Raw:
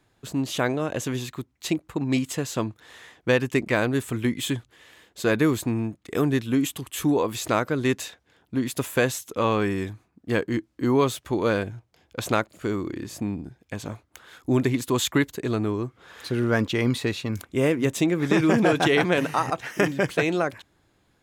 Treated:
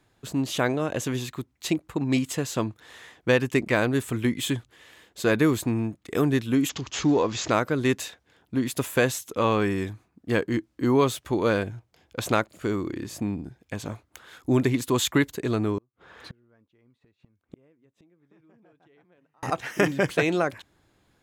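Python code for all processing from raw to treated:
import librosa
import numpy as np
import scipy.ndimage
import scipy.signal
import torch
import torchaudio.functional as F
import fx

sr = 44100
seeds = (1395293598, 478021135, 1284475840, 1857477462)

y = fx.chain(x, sr, fx.law_mismatch(coded='mu'),
    fx.resample_bad(factor=3, down='none', up='filtered'), at=(6.69, 7.51))
y = fx.chain(y, sr, fx.lowpass(hz=1600.0, slope=6),
    fx.gate_flip(shuts_db=-28.0, range_db=-39), at=(15.78, 19.43))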